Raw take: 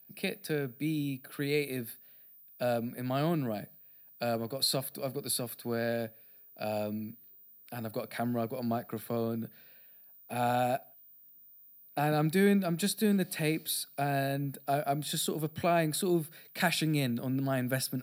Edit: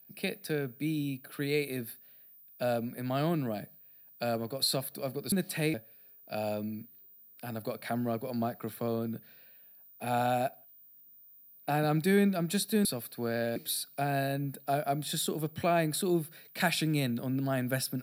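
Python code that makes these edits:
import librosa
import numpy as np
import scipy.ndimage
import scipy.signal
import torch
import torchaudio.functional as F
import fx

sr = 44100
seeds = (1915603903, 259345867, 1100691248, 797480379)

y = fx.edit(x, sr, fx.swap(start_s=5.32, length_s=0.71, other_s=13.14, other_length_s=0.42), tone=tone)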